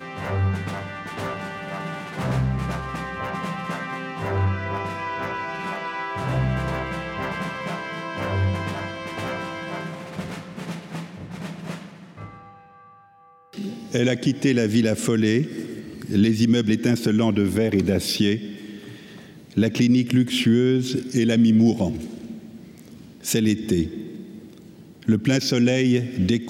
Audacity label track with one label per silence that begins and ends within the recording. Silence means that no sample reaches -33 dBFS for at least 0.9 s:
12.280000	13.540000	silence